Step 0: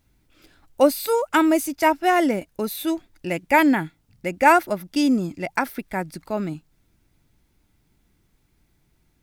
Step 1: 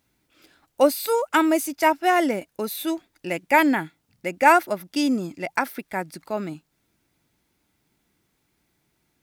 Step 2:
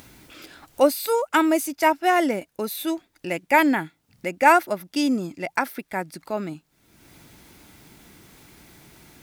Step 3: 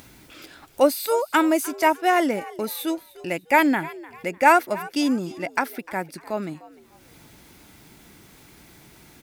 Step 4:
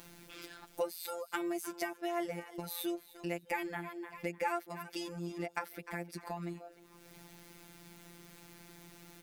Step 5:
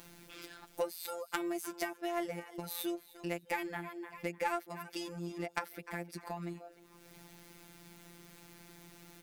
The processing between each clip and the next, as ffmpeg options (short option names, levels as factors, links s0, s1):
-af "highpass=f=270:p=1"
-af "acompressor=mode=upward:threshold=0.0251:ratio=2.5"
-filter_complex "[0:a]asplit=4[s0][s1][s2][s3];[s1]adelay=301,afreqshift=78,volume=0.112[s4];[s2]adelay=602,afreqshift=156,volume=0.0359[s5];[s3]adelay=903,afreqshift=234,volume=0.0115[s6];[s0][s4][s5][s6]amix=inputs=4:normalize=0"
-af "acompressor=threshold=0.0251:ratio=3,afftfilt=real='hypot(re,im)*cos(PI*b)':imag='0':win_size=1024:overlap=0.75,volume=0.794"
-af "aeval=exprs='0.158*(cos(1*acos(clip(val(0)/0.158,-1,1)))-cos(1*PI/2))+0.02*(cos(3*acos(clip(val(0)/0.158,-1,1)))-cos(3*PI/2))':c=same,volume=1.5"